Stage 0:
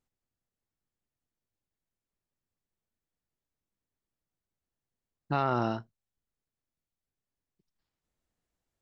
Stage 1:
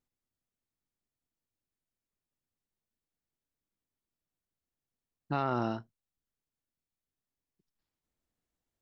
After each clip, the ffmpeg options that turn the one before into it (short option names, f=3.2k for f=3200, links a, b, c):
-af "equalizer=f=270:t=o:w=0.77:g=3,volume=-3.5dB"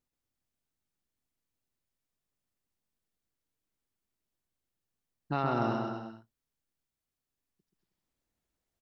-af "aecho=1:1:130|234|317.2|383.8|437:0.631|0.398|0.251|0.158|0.1"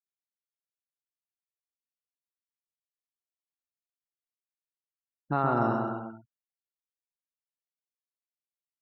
-af "afftfilt=real='re*gte(hypot(re,im),0.00316)':imag='im*gte(hypot(re,im),0.00316)':win_size=1024:overlap=0.75,highshelf=f=1.9k:t=q:w=1.5:g=-9,volume=3dB"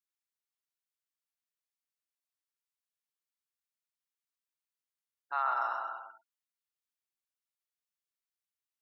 -af "highpass=f=940:w=0.5412,highpass=f=940:w=1.3066"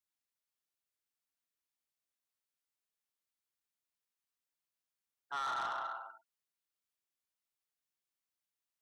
-af "asoftclip=type=tanh:threshold=-33.5dB"